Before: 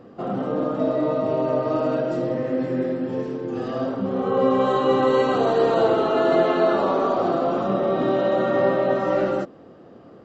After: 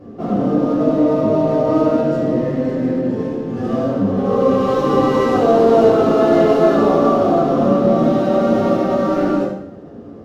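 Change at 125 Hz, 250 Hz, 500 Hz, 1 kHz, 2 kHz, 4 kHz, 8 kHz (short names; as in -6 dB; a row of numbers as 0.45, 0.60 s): +9.0 dB, +9.0 dB, +5.5 dB, +4.5 dB, +1.0 dB, +1.5 dB, n/a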